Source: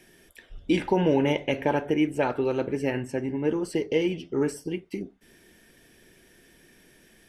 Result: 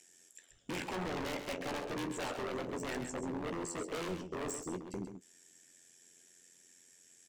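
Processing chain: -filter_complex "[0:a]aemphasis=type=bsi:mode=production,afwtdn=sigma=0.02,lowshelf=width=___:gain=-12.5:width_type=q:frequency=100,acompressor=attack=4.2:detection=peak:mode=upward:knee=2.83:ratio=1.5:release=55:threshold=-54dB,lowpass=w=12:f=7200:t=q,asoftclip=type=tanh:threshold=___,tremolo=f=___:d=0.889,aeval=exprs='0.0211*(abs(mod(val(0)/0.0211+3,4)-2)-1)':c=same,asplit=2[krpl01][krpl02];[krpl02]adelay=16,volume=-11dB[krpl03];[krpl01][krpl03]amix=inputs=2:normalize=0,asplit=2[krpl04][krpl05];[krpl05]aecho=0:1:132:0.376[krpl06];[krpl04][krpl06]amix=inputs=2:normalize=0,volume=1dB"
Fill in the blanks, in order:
1.5, -26.5dB, 88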